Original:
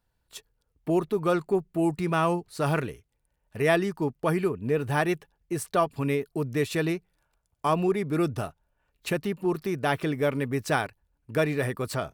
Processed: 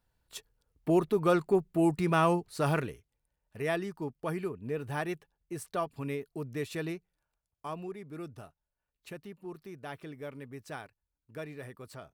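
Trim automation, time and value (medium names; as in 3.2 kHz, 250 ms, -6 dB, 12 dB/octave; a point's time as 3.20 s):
2.43 s -1 dB
3.59 s -9 dB
6.94 s -9 dB
7.97 s -16.5 dB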